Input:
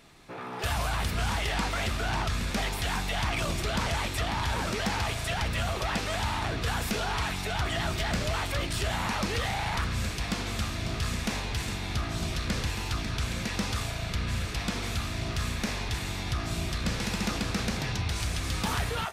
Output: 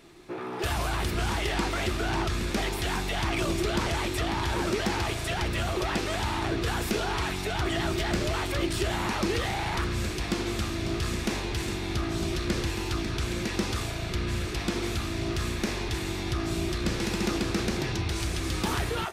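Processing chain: bell 350 Hz +15 dB 0.36 oct

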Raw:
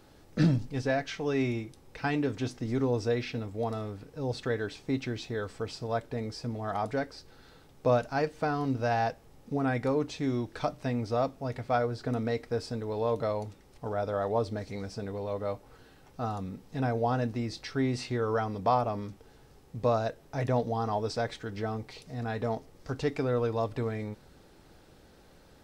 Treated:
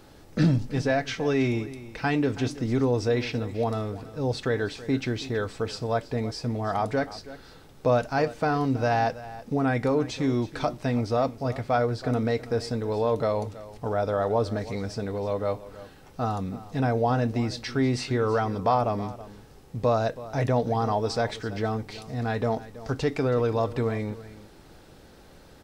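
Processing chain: in parallel at -0.5 dB: limiter -23.5 dBFS, peak gain reduction 9 dB; on the sum: echo 0.325 s -16.5 dB

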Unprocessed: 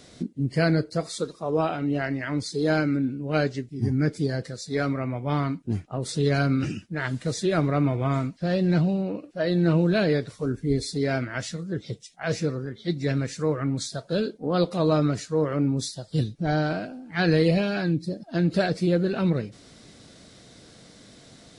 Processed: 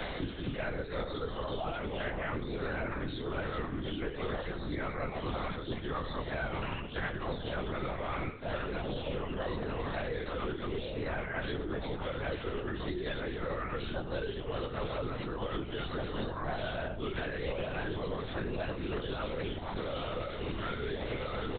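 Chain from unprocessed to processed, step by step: HPF 500 Hz 12 dB/oct; reverse; compressor, threshold -41 dBFS, peak gain reduction 19 dB; reverse; echoes that change speed 0.213 s, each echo -3 st, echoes 2; doubler 20 ms -2.5 dB; on a send at -11.5 dB: reverb RT60 0.35 s, pre-delay 70 ms; on the sum: LPC vocoder at 8 kHz whisper; three-band squash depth 100%; gain +3.5 dB

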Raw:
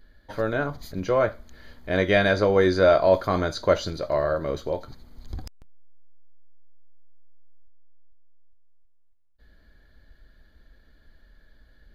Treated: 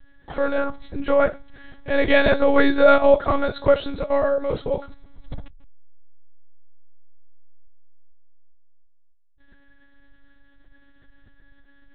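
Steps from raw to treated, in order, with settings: monotone LPC vocoder at 8 kHz 280 Hz; gain +4 dB

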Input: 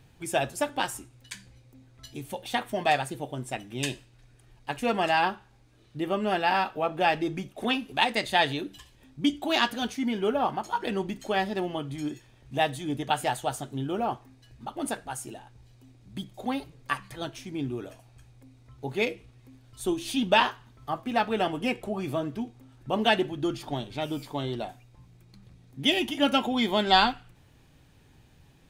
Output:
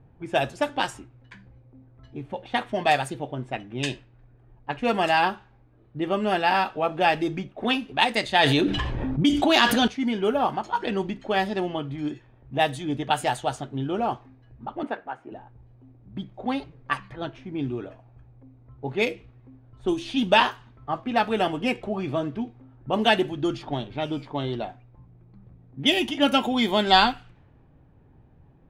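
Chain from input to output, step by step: 14.83–15.32 three-band isolator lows -19 dB, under 230 Hz, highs -18 dB, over 3000 Hz; low-pass opened by the level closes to 930 Hz, open at -22 dBFS; 8.43–9.88 fast leveller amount 70%; gain +3 dB

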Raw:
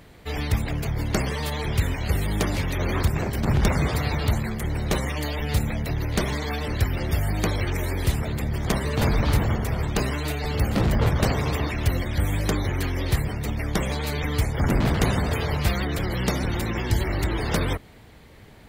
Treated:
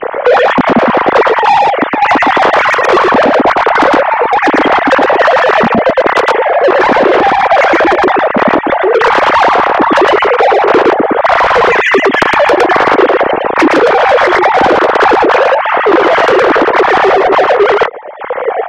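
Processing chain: sine-wave speech; LPF 1000 Hz 12 dB/oct; compressor 2.5:1, threshold -30 dBFS, peak gain reduction 10.5 dB; step gate "xxx.xxx.x.x...xx" 104 bpm -12 dB; soft clip -34 dBFS, distortion -7 dB; echo 0.113 s -3 dB; maximiser +35 dB; gain -1 dB

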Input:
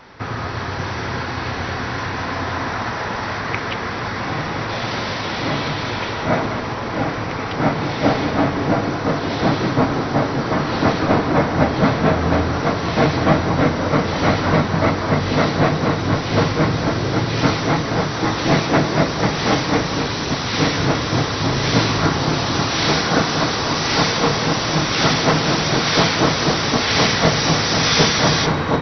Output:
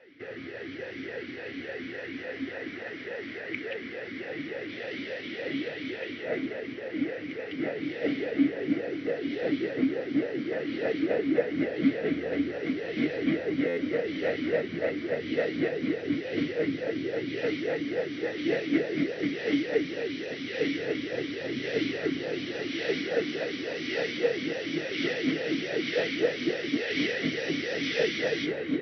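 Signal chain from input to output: stuck buffer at 13.67, samples 512, times 8; vowel sweep e-i 3.5 Hz

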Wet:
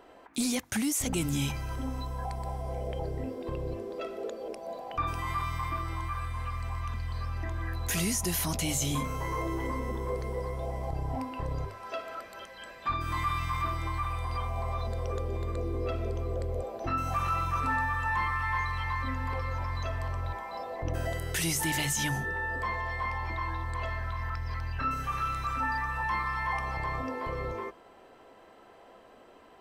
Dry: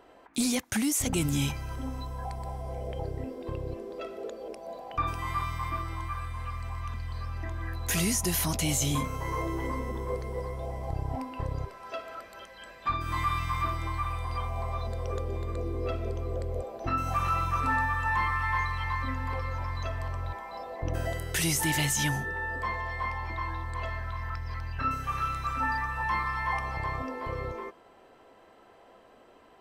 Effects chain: notches 50/100/150 Hz; in parallel at +2 dB: limiter -27.5 dBFS, peak gain reduction 9.5 dB; on the sum: gain -5.5 dB

